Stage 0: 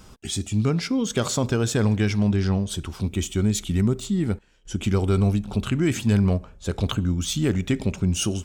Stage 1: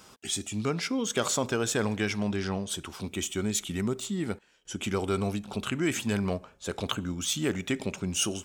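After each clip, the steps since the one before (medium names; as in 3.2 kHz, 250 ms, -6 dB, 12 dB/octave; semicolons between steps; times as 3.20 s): high-pass 500 Hz 6 dB/octave; dynamic bell 4.5 kHz, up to -4 dB, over -47 dBFS, Q 2.4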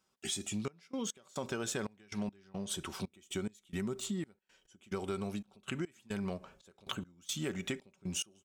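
comb 5.3 ms, depth 31%; compression, threshold -32 dBFS, peak gain reduction 10 dB; trance gate "..xxxxxx...xx." 177 bpm -24 dB; trim -1.5 dB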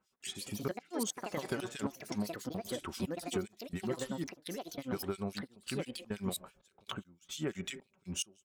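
harmonic tremolo 5.9 Hz, depth 100%, crossover 2.1 kHz; ever faster or slower copies 204 ms, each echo +5 st, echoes 2; trim +3 dB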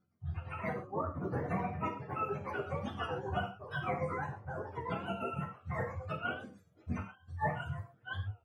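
spectrum inverted on a logarithmic axis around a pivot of 520 Hz; gated-style reverb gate 160 ms falling, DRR 0.5 dB; warped record 33 1/3 rpm, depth 100 cents; trim +2.5 dB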